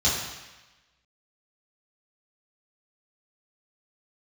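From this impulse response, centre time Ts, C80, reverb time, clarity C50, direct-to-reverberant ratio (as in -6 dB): 65 ms, 4.0 dB, 1.1 s, 2.0 dB, -8.0 dB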